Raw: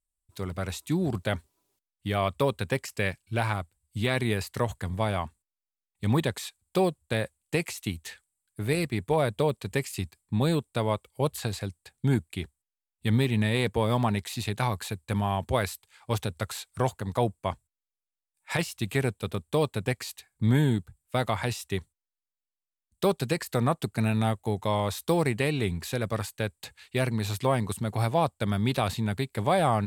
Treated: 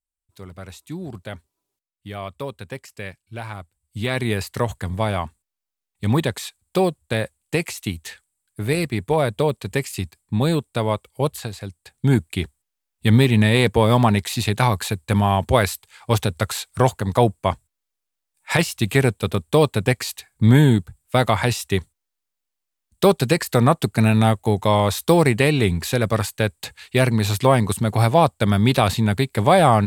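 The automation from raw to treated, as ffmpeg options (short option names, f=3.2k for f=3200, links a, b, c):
-af "volume=16.5dB,afade=t=in:st=3.49:d=0.91:silence=0.298538,afade=t=out:st=11.25:d=0.29:silence=0.446684,afade=t=in:st=11.54:d=0.8:silence=0.281838"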